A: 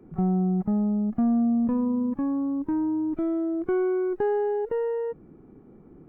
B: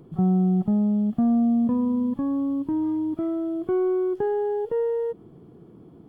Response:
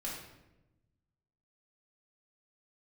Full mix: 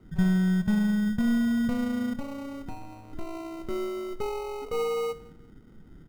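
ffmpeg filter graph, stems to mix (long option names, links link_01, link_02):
-filter_complex "[0:a]lowshelf=frequency=83:gain=11.5,volume=-1dB,asplit=2[link_01][link_02];[link_02]volume=-17dB[link_03];[1:a]afwtdn=0.0562,equalizer=frequency=130:width_type=o:width=1.1:gain=-7,adelay=1.3,volume=-2dB,asplit=2[link_04][link_05];[link_05]volume=-7dB[link_06];[2:a]atrim=start_sample=2205[link_07];[link_03][link_06]amix=inputs=2:normalize=0[link_08];[link_08][link_07]afir=irnorm=-1:irlink=0[link_09];[link_01][link_04][link_09]amix=inputs=3:normalize=0,equalizer=frequency=400:width_type=o:width=1.7:gain=-8,acrusher=samples=26:mix=1:aa=0.000001,highshelf=frequency=2000:gain=-11"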